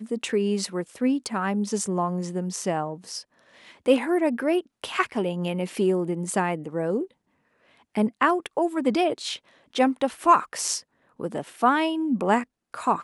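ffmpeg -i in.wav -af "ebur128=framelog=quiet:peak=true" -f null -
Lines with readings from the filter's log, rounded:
Integrated loudness:
  I:         -25.4 LUFS
  Threshold: -35.9 LUFS
Loudness range:
  LRA:         3.5 LU
  Threshold: -45.9 LUFS
  LRA low:   -27.7 LUFS
  LRA high:  -24.1 LUFS
True peak:
  Peak:       -6.0 dBFS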